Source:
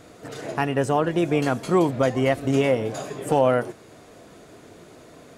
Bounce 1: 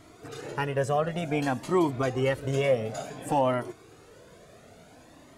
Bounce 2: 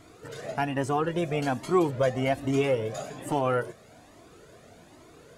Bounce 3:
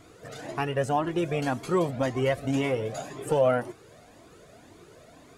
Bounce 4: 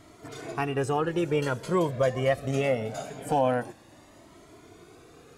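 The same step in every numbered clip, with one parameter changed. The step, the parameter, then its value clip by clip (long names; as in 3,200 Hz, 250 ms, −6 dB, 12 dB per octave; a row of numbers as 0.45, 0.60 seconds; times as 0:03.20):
flanger whose copies keep moving one way, speed: 0.56, 1.2, 1.9, 0.23 Hertz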